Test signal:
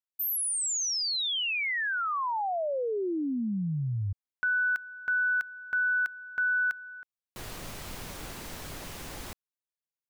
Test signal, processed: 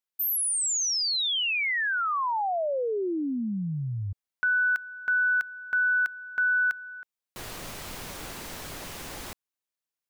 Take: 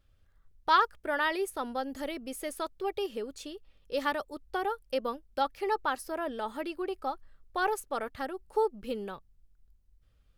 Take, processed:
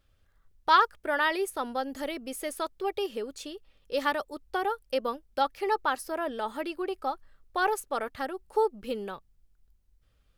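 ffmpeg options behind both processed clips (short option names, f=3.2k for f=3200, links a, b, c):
-af "lowshelf=f=210:g=-5,volume=3dB"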